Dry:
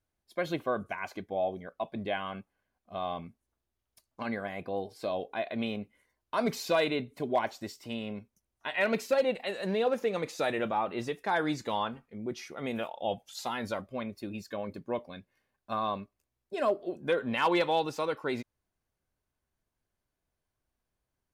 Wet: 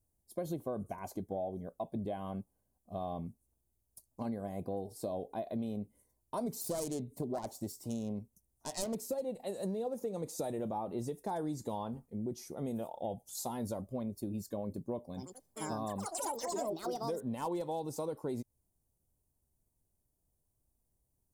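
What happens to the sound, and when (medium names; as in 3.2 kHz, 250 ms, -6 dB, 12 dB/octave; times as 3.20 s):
6.61–8.95 s: self-modulated delay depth 0.2 ms
15.05–17.96 s: ever faster or slower copies 96 ms, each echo +6 st, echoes 3
whole clip: FFT filter 120 Hz 0 dB, 910 Hz -9 dB, 1.4 kHz -23 dB, 2.6 kHz -25 dB, 8.7 kHz +3 dB; compression, threshold -40 dBFS; trim +6 dB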